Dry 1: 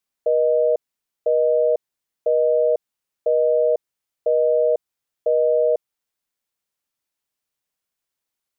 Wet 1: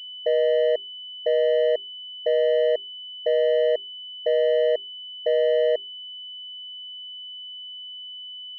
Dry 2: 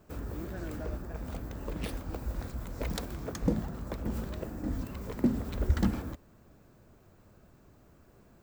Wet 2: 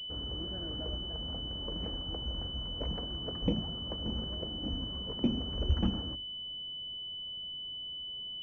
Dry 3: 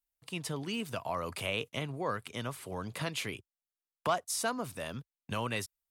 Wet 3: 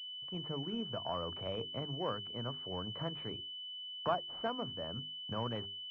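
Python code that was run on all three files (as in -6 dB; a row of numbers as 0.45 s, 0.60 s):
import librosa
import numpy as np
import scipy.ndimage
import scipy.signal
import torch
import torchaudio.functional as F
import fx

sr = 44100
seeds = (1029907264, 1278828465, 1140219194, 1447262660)

y = fx.air_absorb(x, sr, metres=280.0)
y = fx.hum_notches(y, sr, base_hz=50, count=8)
y = fx.pwm(y, sr, carrier_hz=3000.0)
y = y * librosa.db_to_amplitude(-1.5)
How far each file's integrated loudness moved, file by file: -2.5 LU, -0.5 LU, -3.0 LU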